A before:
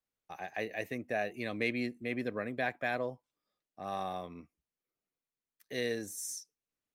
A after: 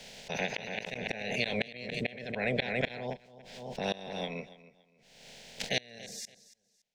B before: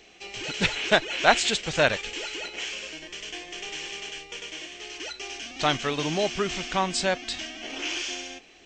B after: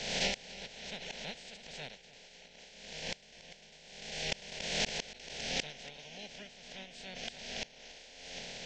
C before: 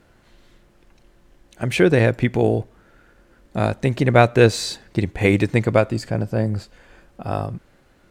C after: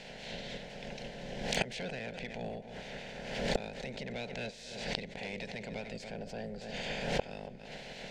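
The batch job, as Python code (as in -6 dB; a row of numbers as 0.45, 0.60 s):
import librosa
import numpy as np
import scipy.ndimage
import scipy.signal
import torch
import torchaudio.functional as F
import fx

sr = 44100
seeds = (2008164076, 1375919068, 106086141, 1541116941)

p1 = fx.spec_clip(x, sr, under_db=22)
p2 = fx.peak_eq(p1, sr, hz=1000.0, db=-3.5, octaves=0.73)
p3 = fx.rider(p2, sr, range_db=4, speed_s=0.5)
p4 = p2 + (p3 * 10.0 ** (-2.5 / 20.0))
p5 = np.clip(p4, -10.0 ** (-9.0 / 20.0), 10.0 ** (-9.0 / 20.0))
p6 = fx.fixed_phaser(p5, sr, hz=320.0, stages=6)
p7 = fx.gate_flip(p6, sr, shuts_db=-23.0, range_db=-30)
p8 = fx.air_absorb(p7, sr, metres=150.0)
p9 = fx.echo_feedback(p8, sr, ms=283, feedback_pct=25, wet_db=-17.5)
p10 = fx.pre_swell(p9, sr, db_per_s=49.0)
y = p10 * 10.0 ** (8.5 / 20.0)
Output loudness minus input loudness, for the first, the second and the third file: +1.5, -12.0, -19.5 LU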